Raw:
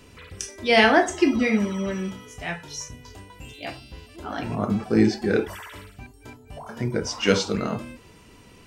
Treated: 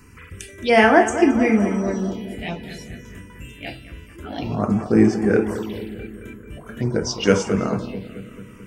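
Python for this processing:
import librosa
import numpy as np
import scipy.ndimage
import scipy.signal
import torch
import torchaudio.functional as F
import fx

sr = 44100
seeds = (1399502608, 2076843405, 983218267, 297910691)

y = fx.echo_filtered(x, sr, ms=219, feedback_pct=68, hz=2900.0, wet_db=-11.5)
y = fx.env_phaser(y, sr, low_hz=580.0, high_hz=4000.0, full_db=-20.5)
y = y * librosa.db_to_amplitude(4.0)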